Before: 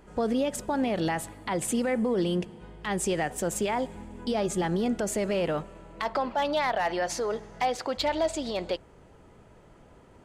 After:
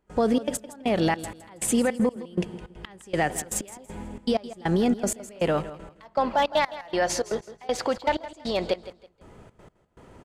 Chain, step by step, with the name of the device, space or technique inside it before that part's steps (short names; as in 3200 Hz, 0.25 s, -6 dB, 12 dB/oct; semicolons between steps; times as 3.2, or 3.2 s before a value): trance gate with a delay (step gate ".xxx.x.." 158 bpm -24 dB; feedback echo 0.163 s, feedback 28%, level -15.5 dB); gain +5 dB